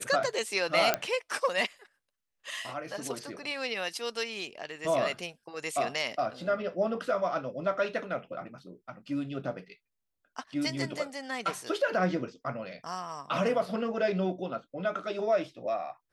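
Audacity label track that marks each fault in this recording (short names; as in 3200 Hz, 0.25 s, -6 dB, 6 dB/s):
0.940000	0.940000	pop -9 dBFS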